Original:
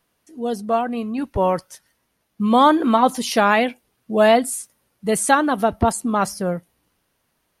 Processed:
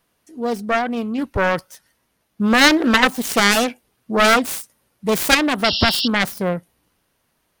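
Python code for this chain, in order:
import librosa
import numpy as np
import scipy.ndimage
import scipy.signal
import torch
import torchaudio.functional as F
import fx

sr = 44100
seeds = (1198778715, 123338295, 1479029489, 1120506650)

y = fx.self_delay(x, sr, depth_ms=0.67)
y = fx.spec_paint(y, sr, seeds[0], shape='noise', start_s=5.64, length_s=0.44, low_hz=2700.0, high_hz=5600.0, level_db=-24.0)
y = y * 10.0 ** (2.0 / 20.0)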